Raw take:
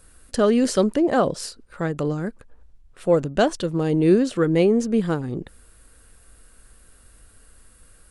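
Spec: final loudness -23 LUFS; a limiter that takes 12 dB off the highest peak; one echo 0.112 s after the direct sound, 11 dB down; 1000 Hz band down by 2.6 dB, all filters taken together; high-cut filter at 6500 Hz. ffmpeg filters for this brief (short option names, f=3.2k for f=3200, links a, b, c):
-af "lowpass=6.5k,equalizer=f=1k:t=o:g=-4,alimiter=limit=-18.5dB:level=0:latency=1,aecho=1:1:112:0.282,volume=4.5dB"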